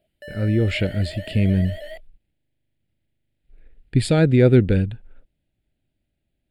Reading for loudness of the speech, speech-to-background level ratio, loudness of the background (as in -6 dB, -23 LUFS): -20.0 LUFS, 17.5 dB, -37.5 LUFS